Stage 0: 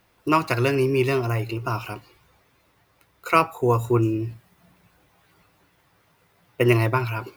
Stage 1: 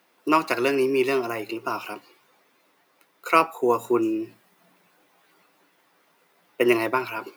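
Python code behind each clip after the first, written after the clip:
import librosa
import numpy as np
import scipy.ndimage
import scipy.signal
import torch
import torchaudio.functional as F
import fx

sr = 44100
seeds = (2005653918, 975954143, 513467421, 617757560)

y = scipy.signal.sosfilt(scipy.signal.butter(4, 220.0, 'highpass', fs=sr, output='sos'), x)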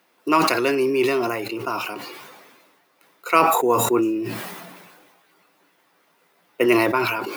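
y = fx.sustainer(x, sr, db_per_s=34.0)
y = y * librosa.db_to_amplitude(1.0)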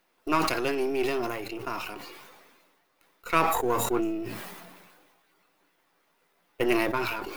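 y = np.where(x < 0.0, 10.0 ** (-7.0 / 20.0) * x, x)
y = y * librosa.db_to_amplitude(-5.0)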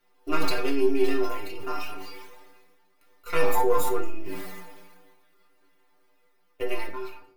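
y = fx.fade_out_tail(x, sr, length_s=1.33)
y = fx.stiff_resonator(y, sr, f0_hz=90.0, decay_s=0.37, stiffness=0.008)
y = fx.room_shoebox(y, sr, seeds[0], volume_m3=38.0, walls='mixed', distance_m=0.36)
y = y * librosa.db_to_amplitude(8.0)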